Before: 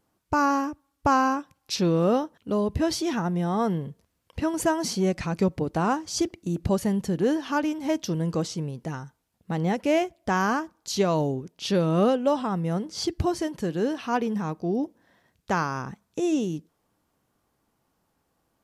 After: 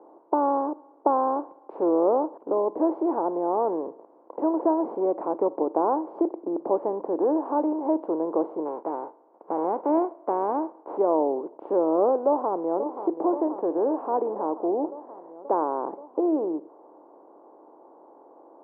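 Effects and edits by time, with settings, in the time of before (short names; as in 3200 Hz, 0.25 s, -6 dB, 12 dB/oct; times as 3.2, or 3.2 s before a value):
8.65–10.96 spectral whitening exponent 0.3
12.26–12.87 echo throw 0.53 s, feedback 65%, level -16 dB
whole clip: per-bin compression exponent 0.6; elliptic band-pass 310–960 Hz, stop band 80 dB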